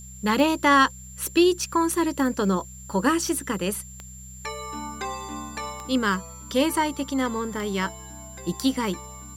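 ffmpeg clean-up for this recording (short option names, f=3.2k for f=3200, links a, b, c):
-af "adeclick=t=4,bandreject=f=63.6:t=h:w=4,bandreject=f=127.2:t=h:w=4,bandreject=f=190.8:t=h:w=4,bandreject=f=7.3k:w=30,agate=range=-21dB:threshold=-33dB"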